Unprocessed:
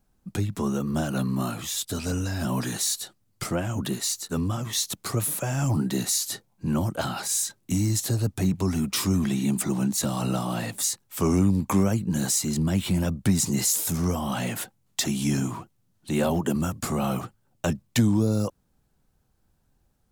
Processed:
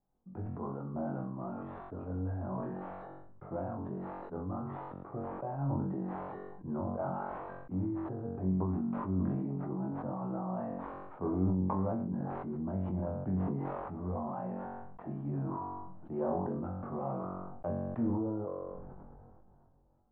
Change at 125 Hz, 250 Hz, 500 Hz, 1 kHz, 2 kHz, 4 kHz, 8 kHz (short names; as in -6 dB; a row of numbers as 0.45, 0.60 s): -10.5 dB, -10.0 dB, -6.5 dB, -5.0 dB, -18.5 dB, under -40 dB, under -40 dB